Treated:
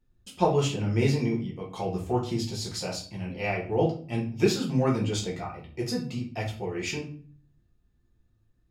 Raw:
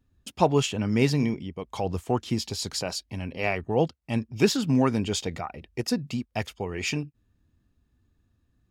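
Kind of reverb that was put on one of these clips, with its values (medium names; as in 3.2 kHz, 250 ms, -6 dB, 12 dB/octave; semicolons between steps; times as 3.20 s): simulated room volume 39 m³, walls mixed, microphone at 0.89 m; trim -8 dB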